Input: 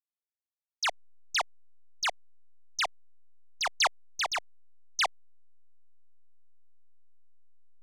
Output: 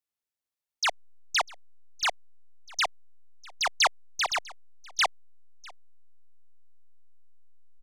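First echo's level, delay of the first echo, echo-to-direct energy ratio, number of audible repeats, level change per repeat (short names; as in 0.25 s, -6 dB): -23.5 dB, 0.648 s, -23.5 dB, 1, no steady repeat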